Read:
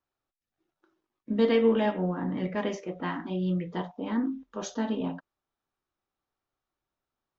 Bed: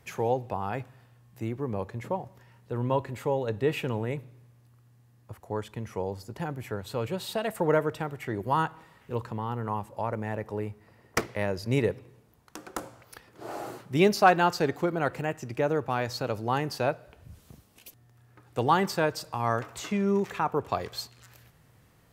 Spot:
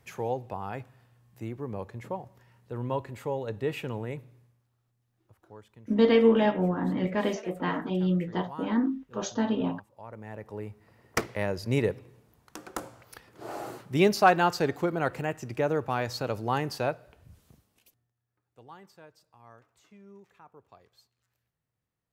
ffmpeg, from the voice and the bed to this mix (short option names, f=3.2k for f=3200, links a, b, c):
-filter_complex "[0:a]adelay=4600,volume=2.5dB[a];[1:a]volume=12dB,afade=t=out:st=4.35:d=0.31:silence=0.237137,afade=t=in:st=9.97:d=1.24:silence=0.158489,afade=t=out:st=16.65:d=1.49:silence=0.0530884[b];[a][b]amix=inputs=2:normalize=0"